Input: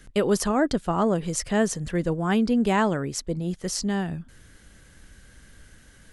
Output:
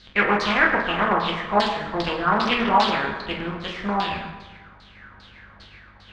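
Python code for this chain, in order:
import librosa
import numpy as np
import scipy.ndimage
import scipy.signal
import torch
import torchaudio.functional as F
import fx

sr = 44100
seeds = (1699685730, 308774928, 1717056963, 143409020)

y = fx.spec_flatten(x, sr, power=0.48)
y = fx.add_hum(y, sr, base_hz=50, snr_db=26)
y = fx.filter_lfo_lowpass(y, sr, shape='saw_down', hz=2.5, low_hz=770.0, high_hz=4500.0, q=7.5)
y = fx.air_absorb(y, sr, metres=61.0)
y = fx.rev_fdn(y, sr, rt60_s=1.3, lf_ratio=1.0, hf_ratio=0.65, size_ms=86.0, drr_db=-1.0)
y = fx.doppler_dist(y, sr, depth_ms=0.33)
y = F.gain(torch.from_numpy(y), -5.5).numpy()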